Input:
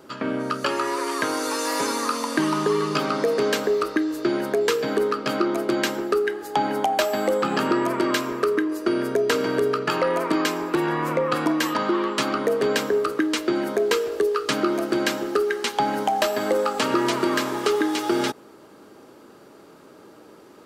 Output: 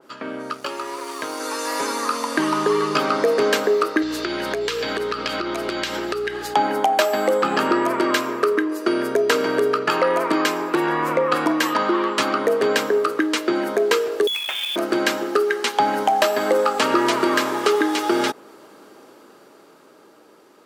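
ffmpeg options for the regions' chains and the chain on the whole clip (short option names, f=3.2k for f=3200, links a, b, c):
-filter_complex "[0:a]asettb=1/sr,asplit=3[a][b][c];[a]atrim=end=0.534[d];[b]atrim=start=0.53:end=1.4,asetpts=PTS-STARTPTS,afade=t=in:d=0.004:c=qsin,afade=t=out:st=0.866:d=0.004:c=qsin,equalizer=f=1.7k:w=2.6:g=-5,aeval=exprs='sgn(val(0))*max(abs(val(0))-0.0126,0)':c=same[e];[c]atrim=start=1.396[f];[d][e]acrossfade=d=0.004:c1=hsin:c2=qsin[g];[g][f]acrossfade=d=0.004:c1=qsin:c2=hsin,asettb=1/sr,asplit=3[h][i][j];[h]atrim=end=4.024[k];[i]atrim=start=4.02:end=6.54,asetpts=PTS-STARTPTS,afade=t=in:d=0.004:c=qsin,afade=t=out:st=2.516:d=0.004:c=qsin,equalizer=f=3.7k:t=o:w=2.1:g=11.5,acompressor=threshold=-24dB:ratio=10:attack=3.2:release=140:knee=1:detection=peak,aeval=exprs='val(0)+0.0126*(sin(2*PI*60*n/s)+sin(2*PI*2*60*n/s)/2+sin(2*PI*3*60*n/s)/3+sin(2*PI*4*60*n/s)/4+sin(2*PI*5*60*n/s)/5)':c=same[l];[j]atrim=start=6.536[m];[k][l]acrossfade=d=0.004:c1=hsin:c2=qsin[n];[n][m]acrossfade=d=0.004:c1=qsin:c2=hsin,asettb=1/sr,asplit=3[o][p][q];[o]atrim=end=14.274[r];[p]atrim=start=14.27:end=14.76,asetpts=PTS-STARTPTS,afade=t=in:d=0.004:c=qsin,afade=t=out:st=0.486:d=0.004:c=qsin,lowpass=f=3.2k:t=q:w=0.5098,lowpass=f=3.2k:t=q:w=0.6013,lowpass=f=3.2k:t=q:w=0.9,lowpass=f=3.2k:t=q:w=2.563,afreqshift=-3800,acompressor=threshold=-25dB:ratio=16:attack=3.2:release=140:knee=1:detection=peak,acrusher=bits=2:mode=log:mix=0:aa=0.000001[s];[q]atrim=start=14.756[t];[r][s]acrossfade=d=0.004:c1=hsin:c2=qsin[u];[u][t]acrossfade=d=0.004:c1=qsin:c2=hsin,highpass=f=360:p=1,dynaudnorm=f=380:g=11:m=10dB,adynamicequalizer=threshold=0.0224:dfrequency=2700:dqfactor=0.7:tfrequency=2700:tqfactor=0.7:attack=5:release=100:ratio=0.375:range=1.5:mode=cutabove:tftype=highshelf,volume=-1.5dB"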